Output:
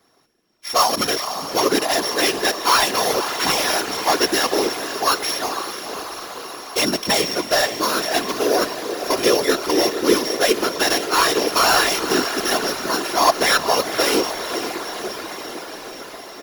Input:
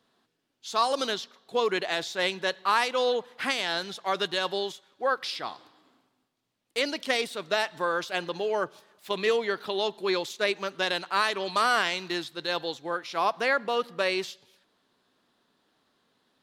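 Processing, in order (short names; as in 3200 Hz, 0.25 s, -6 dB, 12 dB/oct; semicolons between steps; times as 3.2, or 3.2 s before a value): sample sorter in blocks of 8 samples; comb 2.9 ms, depth 70%; in parallel at -10 dB: sine folder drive 8 dB, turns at -8.5 dBFS; on the sum: diffused feedback echo 0.507 s, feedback 70%, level -9 dB; whisperiser; gain +1 dB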